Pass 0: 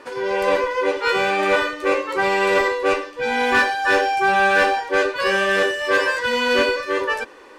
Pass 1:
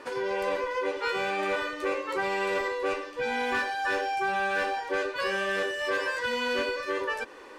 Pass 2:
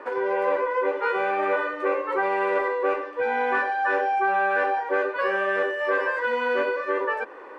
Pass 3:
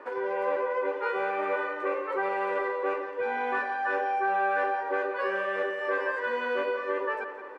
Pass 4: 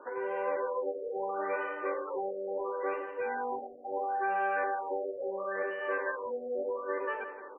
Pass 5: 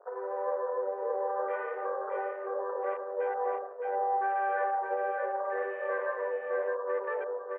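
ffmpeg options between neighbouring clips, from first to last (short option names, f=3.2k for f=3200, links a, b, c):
-af "acompressor=threshold=-26dB:ratio=3,volume=-2.5dB"
-filter_complex "[0:a]acrossover=split=310 2000:gain=0.141 1 0.0708[a][b][c];[a][b][c]amix=inputs=3:normalize=0,volume=7dB"
-filter_complex "[0:a]asplit=2[a][b];[b]adelay=173,lowpass=f=4.3k:p=1,volume=-10dB,asplit=2[c][d];[d]adelay=173,lowpass=f=4.3k:p=1,volume=0.55,asplit=2[e][f];[f]adelay=173,lowpass=f=4.3k:p=1,volume=0.55,asplit=2[g][h];[h]adelay=173,lowpass=f=4.3k:p=1,volume=0.55,asplit=2[i][j];[j]adelay=173,lowpass=f=4.3k:p=1,volume=0.55,asplit=2[k][l];[l]adelay=173,lowpass=f=4.3k:p=1,volume=0.55[m];[a][c][e][g][i][k][m]amix=inputs=7:normalize=0,volume=-5.5dB"
-af "afftfilt=real='re*lt(b*sr/1024,730*pow(3200/730,0.5+0.5*sin(2*PI*0.73*pts/sr)))':imag='im*lt(b*sr/1024,730*pow(3200/730,0.5+0.5*sin(2*PI*0.73*pts/sr)))':win_size=1024:overlap=0.75,volume=-4dB"
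-af "afwtdn=0.0126,highpass=f=440:w=0.5412,highpass=f=440:w=1.3066,equalizer=f=450:t=q:w=4:g=9,equalizer=f=690:t=q:w=4:g=9,equalizer=f=1.1k:t=q:w=4:g=3,equalizer=f=1.8k:t=q:w=4:g=3,lowpass=f=2.3k:w=0.5412,lowpass=f=2.3k:w=1.3066,aecho=1:1:615:0.668,volume=-4dB"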